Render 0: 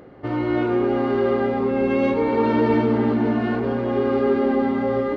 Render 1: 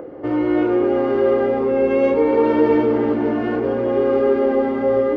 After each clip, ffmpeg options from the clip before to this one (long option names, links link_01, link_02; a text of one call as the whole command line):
ffmpeg -i in.wav -filter_complex "[0:a]equalizer=frequency=315:width_type=o:width=0.33:gain=11,equalizer=frequency=500:width_type=o:width=0.33:gain=10,equalizer=frequency=4000:width_type=o:width=0.33:gain=-7,acrossover=split=100|330|1200[link_01][link_02][link_03][link_04];[link_02]alimiter=level_in=1dB:limit=-24dB:level=0:latency=1,volume=-1dB[link_05];[link_03]acompressor=mode=upward:threshold=-29dB:ratio=2.5[link_06];[link_01][link_05][link_06][link_04]amix=inputs=4:normalize=0" out.wav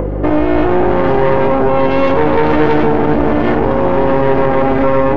ffmpeg -i in.wav -af "aeval=exprs='0.631*(cos(1*acos(clip(val(0)/0.631,-1,1)))-cos(1*PI/2))+0.158*(cos(6*acos(clip(val(0)/0.631,-1,1)))-cos(6*PI/2))':channel_layout=same,aeval=exprs='val(0)+0.0282*(sin(2*PI*50*n/s)+sin(2*PI*2*50*n/s)/2+sin(2*PI*3*50*n/s)/3+sin(2*PI*4*50*n/s)/4+sin(2*PI*5*50*n/s)/5)':channel_layout=same,alimiter=level_in=13.5dB:limit=-1dB:release=50:level=0:latency=1,volume=-1dB" out.wav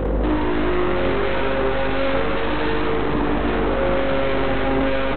ffmpeg -i in.wav -af "aresample=8000,volume=19dB,asoftclip=hard,volume=-19dB,aresample=44100,aecho=1:1:55.39|137:0.794|0.316,volume=-1dB" out.wav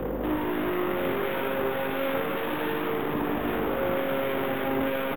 ffmpeg -i in.wav -filter_complex "[0:a]acrossover=split=110|890[link_01][link_02][link_03];[link_01]asoftclip=type=tanh:threshold=-32.5dB[link_04];[link_04][link_02][link_03]amix=inputs=3:normalize=0,aresample=8000,aresample=44100,acrusher=samples=3:mix=1:aa=0.000001,volume=-6.5dB" out.wav